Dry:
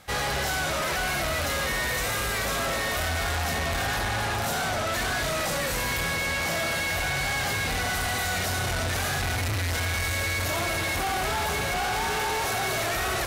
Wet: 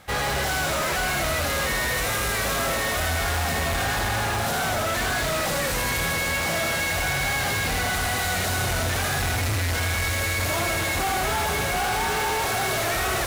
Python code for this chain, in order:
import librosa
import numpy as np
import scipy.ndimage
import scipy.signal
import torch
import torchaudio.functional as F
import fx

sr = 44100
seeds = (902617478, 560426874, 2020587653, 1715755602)

p1 = fx.sample_hold(x, sr, seeds[0], rate_hz=9100.0, jitter_pct=0)
p2 = x + (p1 * 10.0 ** (-8.0 / 20.0))
y = fx.echo_wet_highpass(p2, sr, ms=79, feedback_pct=83, hz=4900.0, wet_db=-3.5)